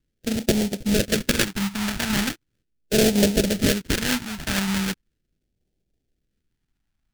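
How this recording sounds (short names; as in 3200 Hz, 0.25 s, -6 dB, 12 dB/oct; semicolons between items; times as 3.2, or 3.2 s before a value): aliases and images of a low sample rate 1100 Hz, jitter 20%; phasing stages 2, 0.39 Hz, lowest notch 470–1100 Hz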